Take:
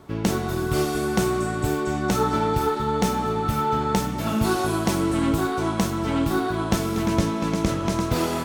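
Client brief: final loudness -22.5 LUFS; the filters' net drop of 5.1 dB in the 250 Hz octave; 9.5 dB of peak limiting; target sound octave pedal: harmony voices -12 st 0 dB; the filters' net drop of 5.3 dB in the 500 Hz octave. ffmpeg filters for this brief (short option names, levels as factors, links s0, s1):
-filter_complex "[0:a]equalizer=f=250:t=o:g=-5.5,equalizer=f=500:t=o:g=-5,alimiter=limit=0.141:level=0:latency=1,asplit=2[s0][s1];[s1]asetrate=22050,aresample=44100,atempo=2,volume=1[s2];[s0][s2]amix=inputs=2:normalize=0,volume=1.41"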